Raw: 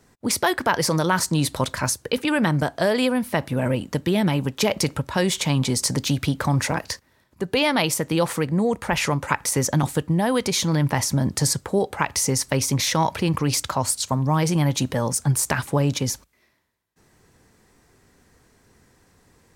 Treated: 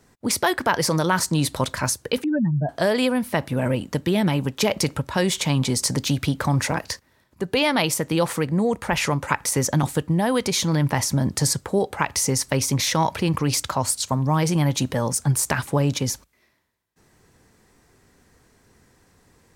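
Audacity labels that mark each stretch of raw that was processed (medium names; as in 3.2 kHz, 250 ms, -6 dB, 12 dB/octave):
2.240000	2.690000	spectral contrast enhancement exponent 3.4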